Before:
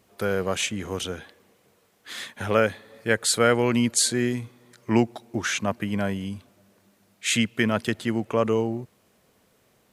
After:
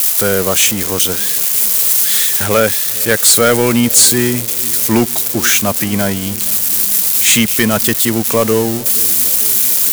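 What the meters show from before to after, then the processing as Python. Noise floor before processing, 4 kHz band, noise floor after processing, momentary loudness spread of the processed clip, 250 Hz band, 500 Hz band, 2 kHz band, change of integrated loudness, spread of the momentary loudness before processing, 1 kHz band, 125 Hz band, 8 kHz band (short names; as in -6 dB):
-64 dBFS, +14.0 dB, -19 dBFS, 6 LU, +9.5 dB, +9.0 dB, +10.0 dB, +14.0 dB, 15 LU, +9.0 dB, +9.0 dB, +19.0 dB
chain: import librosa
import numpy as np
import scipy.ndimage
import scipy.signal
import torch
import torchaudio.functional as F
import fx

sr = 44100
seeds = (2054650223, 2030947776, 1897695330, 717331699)

y = x + 0.5 * 10.0 ** (-20.0 / 20.0) * np.diff(np.sign(x), prepend=np.sign(x[:1]))
y = fx.high_shelf(y, sr, hz=4100.0, db=8.0)
y = fx.leveller(y, sr, passes=3)
y = fx.echo_wet_lowpass(y, sr, ms=454, feedback_pct=72, hz=500.0, wet_db=-19.0)
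y = y * librosa.db_to_amplitude(-1.0)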